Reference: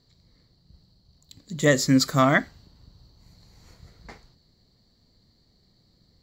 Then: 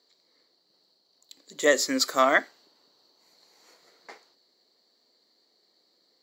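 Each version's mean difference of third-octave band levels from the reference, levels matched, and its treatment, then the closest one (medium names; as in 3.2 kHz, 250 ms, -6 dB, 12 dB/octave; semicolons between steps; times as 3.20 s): 5.5 dB: high-pass 350 Hz 24 dB/octave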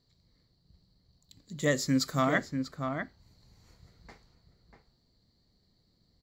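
3.0 dB: echo from a far wall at 110 m, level -6 dB; trim -8 dB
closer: second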